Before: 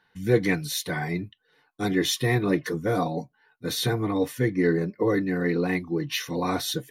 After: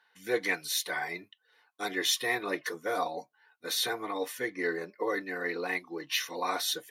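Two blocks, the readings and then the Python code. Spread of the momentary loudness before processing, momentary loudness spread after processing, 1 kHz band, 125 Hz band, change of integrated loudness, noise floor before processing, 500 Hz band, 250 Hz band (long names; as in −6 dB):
8 LU, 7 LU, −2.5 dB, −26.0 dB, −6.0 dB, −69 dBFS, −8.0 dB, −14.5 dB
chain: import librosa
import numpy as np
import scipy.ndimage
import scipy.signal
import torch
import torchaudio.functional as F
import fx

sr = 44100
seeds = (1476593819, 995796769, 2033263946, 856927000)

y = scipy.signal.sosfilt(scipy.signal.butter(2, 630.0, 'highpass', fs=sr, output='sos'), x)
y = y * 10.0 ** (-1.0 / 20.0)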